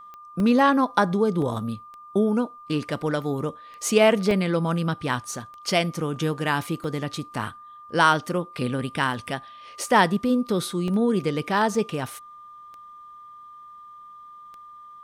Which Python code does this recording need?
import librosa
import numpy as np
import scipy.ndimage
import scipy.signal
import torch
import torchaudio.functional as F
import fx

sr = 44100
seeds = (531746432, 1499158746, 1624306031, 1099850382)

y = fx.fix_declick_ar(x, sr, threshold=10.0)
y = fx.notch(y, sr, hz=1200.0, q=30.0)
y = fx.fix_interpolate(y, sr, at_s=(0.4, 1.42, 4.31, 6.16, 6.84, 10.88, 11.75), length_ms=1.2)